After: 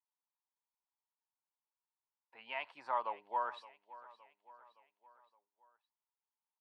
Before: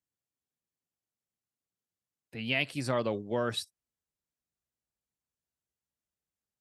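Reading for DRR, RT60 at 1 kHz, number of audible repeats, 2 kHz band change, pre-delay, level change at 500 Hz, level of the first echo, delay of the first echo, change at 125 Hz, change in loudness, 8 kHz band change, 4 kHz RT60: no reverb, no reverb, 3, -11.0 dB, no reverb, -13.0 dB, -18.0 dB, 567 ms, under -40 dB, -7.5 dB, under -30 dB, no reverb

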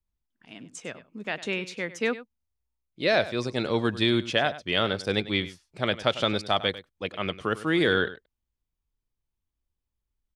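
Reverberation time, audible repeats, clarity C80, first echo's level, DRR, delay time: no reverb, 1, no reverb, -15.5 dB, no reverb, 99 ms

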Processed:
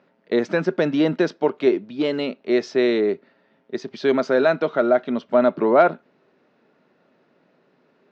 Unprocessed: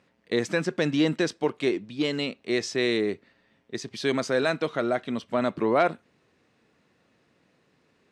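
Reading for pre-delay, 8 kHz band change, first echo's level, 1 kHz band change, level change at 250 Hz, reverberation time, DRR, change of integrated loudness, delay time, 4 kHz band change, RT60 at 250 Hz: no reverb, no reading, no echo, +6.0 dB, +5.0 dB, no reverb, no reverb, +6.0 dB, no echo, -2.0 dB, no reverb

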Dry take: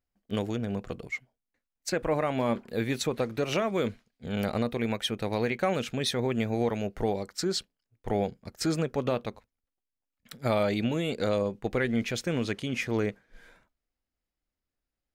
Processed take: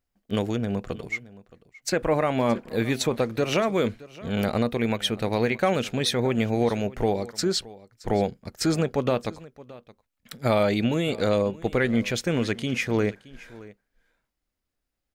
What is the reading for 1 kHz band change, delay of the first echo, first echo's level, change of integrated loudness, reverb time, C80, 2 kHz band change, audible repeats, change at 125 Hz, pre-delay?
+4.5 dB, 621 ms, -20.0 dB, +4.5 dB, no reverb, no reverb, +4.5 dB, 1, +4.5 dB, no reverb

